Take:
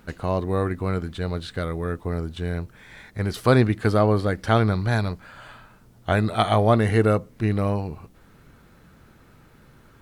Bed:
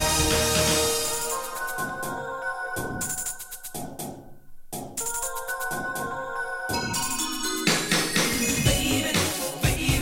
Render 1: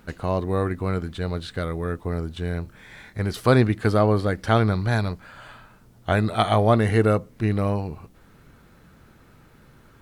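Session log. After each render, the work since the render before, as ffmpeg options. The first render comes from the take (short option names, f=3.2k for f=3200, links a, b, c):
-filter_complex "[0:a]asettb=1/sr,asplit=3[a][b][c];[a]atrim=end=2.624[d];[b]atrim=start=2.62:end=3.2,asetpts=PTS-STARTPTS,afade=t=in:d=0.004:c=qsin,afade=t=out:st=0.576:d=0.004:c=qsin,asplit=2[e][f];[f]adelay=27,volume=-7dB[g];[e][g]amix=inputs=2:normalize=0,atrim=end_sample=25578[h];[c]atrim=start=3.196[i];[d][h]acrossfade=d=0.004:c1=hsin:c2=qsin[j];[j][i]acrossfade=d=0.004:c1=qsin:c2=hsin"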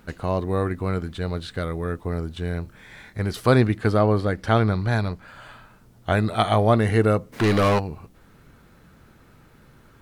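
-filter_complex "[0:a]asettb=1/sr,asplit=3[a][b][c];[a]atrim=end=3.774[d];[b]atrim=start=3.77:end=5.28,asetpts=PTS-STARTPTS,afade=t=in:d=0.004:c=qsin,afade=t=out:st=1.506:d=0.004:c=qsin,highshelf=f=5.9k:g=-5[e];[c]atrim=start=5.276[f];[d][e]acrossfade=d=0.004:c1=hsin:c2=qsin[g];[g][f]acrossfade=d=0.004:c1=qsin:c2=hsin,asplit=3[h][i][j];[h]afade=t=out:st=7.32:d=0.02[k];[i]asplit=2[l][m];[m]highpass=f=720:p=1,volume=27dB,asoftclip=type=tanh:threshold=-11.5dB[n];[l][n]amix=inputs=2:normalize=0,lowpass=f=7.5k:p=1,volume=-6dB,afade=t=in:st=7.32:d=0.02,afade=t=out:st=7.78:d=0.02[o];[j]afade=t=in:st=7.78:d=0.02[p];[k][o][p]amix=inputs=3:normalize=0"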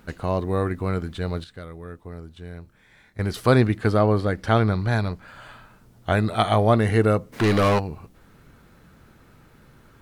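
-filter_complex "[0:a]asplit=3[a][b][c];[a]atrim=end=1.442[d];[b]atrim=start=1.438:end=3.192,asetpts=PTS-STARTPTS,volume=-10.5dB[e];[c]atrim=start=3.188[f];[d][e]acrossfade=d=0.004:c1=hsin:c2=hsin[g];[g][f]acrossfade=d=0.004:c1=hsin:c2=hsin"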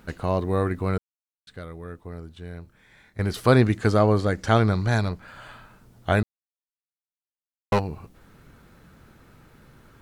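-filter_complex "[0:a]asettb=1/sr,asplit=3[a][b][c];[a]atrim=end=3.664[d];[b]atrim=start=3.66:end=5.09,asetpts=PTS-STARTPTS,afade=t=in:d=0.004:c=qsin,afade=t=out:st=1.426:d=0.004:c=qsin,equalizer=f=6.8k:t=o:w=0.65:g=10[e];[c]atrim=start=5.086[f];[d][e]acrossfade=d=0.004:c1=hsin:c2=qsin[g];[g][f]acrossfade=d=0.004:c1=qsin:c2=hsin,asplit=5[h][i][j][k][l];[h]atrim=end=0.98,asetpts=PTS-STARTPTS,afade=t=out:st=0.976:d=0.004:c=hsin[m];[i]atrim=start=0.98:end=1.47,asetpts=PTS-STARTPTS,volume=0[n];[j]atrim=start=1.47:end=6.23,asetpts=PTS-STARTPTS,afade=t=in:d=0.004:c=hsin,afade=t=out:st=4.756:d=0.004:c=hsin[o];[k]atrim=start=6.23:end=7.72,asetpts=PTS-STARTPTS,volume=0[p];[l]atrim=start=7.72,asetpts=PTS-STARTPTS,afade=t=in:d=0.004:c=hsin[q];[m][n][o][p][q]concat=n=5:v=0:a=1"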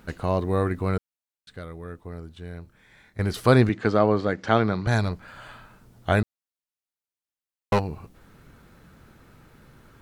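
-filter_complex "[0:a]asettb=1/sr,asplit=3[a][b][c];[a]atrim=end=3.694[d];[b]atrim=start=3.69:end=4.87,asetpts=PTS-STARTPTS,afade=t=in:d=0.004:c=qsin,afade=t=out:st=1.176:d=0.004:c=qsin,highpass=150,lowpass=4k[e];[c]atrim=start=4.866[f];[d][e]acrossfade=d=0.004:c1=hsin:c2=qsin[g];[g][f]acrossfade=d=0.004:c1=qsin:c2=hsin"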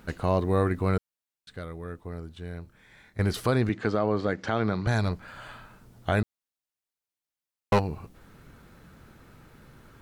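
-af "alimiter=limit=-13.5dB:level=0:latency=1:release=161"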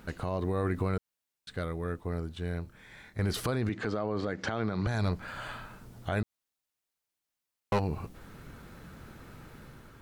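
-af "alimiter=level_in=0.5dB:limit=-24dB:level=0:latency=1:release=109,volume=-0.5dB,dynaudnorm=f=100:g=9:m=3.5dB"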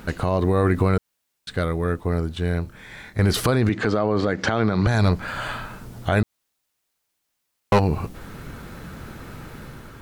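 -af "volume=11dB"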